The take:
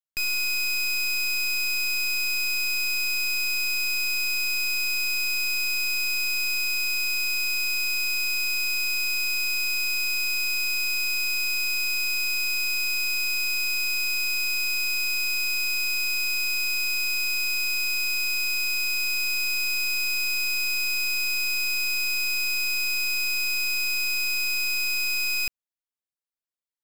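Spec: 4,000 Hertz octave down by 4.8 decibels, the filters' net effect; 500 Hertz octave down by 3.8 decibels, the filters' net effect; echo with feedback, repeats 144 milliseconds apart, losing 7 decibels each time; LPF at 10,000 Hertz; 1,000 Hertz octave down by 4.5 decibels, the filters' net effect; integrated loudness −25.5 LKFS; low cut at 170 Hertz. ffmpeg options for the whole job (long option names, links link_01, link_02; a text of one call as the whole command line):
ffmpeg -i in.wav -af "highpass=170,lowpass=10000,equalizer=frequency=500:width_type=o:gain=-5.5,equalizer=frequency=1000:width_type=o:gain=-5.5,equalizer=frequency=4000:width_type=o:gain=-6.5,aecho=1:1:144|288|432|576|720:0.447|0.201|0.0905|0.0407|0.0183,volume=3dB" out.wav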